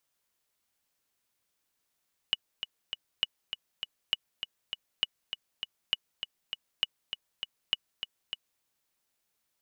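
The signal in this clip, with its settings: metronome 200 bpm, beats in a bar 3, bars 7, 2.93 kHz, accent 8.5 dB -12.5 dBFS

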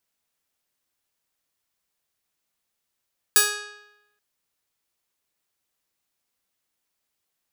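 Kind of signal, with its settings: plucked string G#4, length 0.83 s, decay 0.93 s, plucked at 0.4, bright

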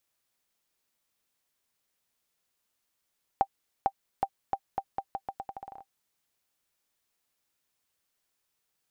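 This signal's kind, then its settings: bouncing ball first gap 0.45 s, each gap 0.82, 785 Hz, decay 61 ms -12 dBFS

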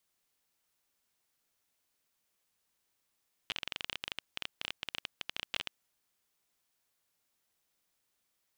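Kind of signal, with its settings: random clicks 17 per s -18 dBFS 2.53 s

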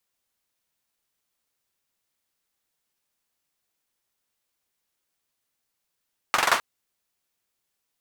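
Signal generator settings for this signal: hand clap length 0.26 s, bursts 5, apart 44 ms, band 1.1 kHz, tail 0.29 s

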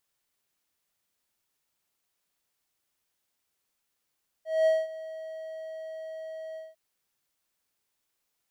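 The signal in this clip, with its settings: ADSR triangle 639 Hz, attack 212 ms, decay 209 ms, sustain -18 dB, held 2.11 s, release 192 ms -16.5 dBFS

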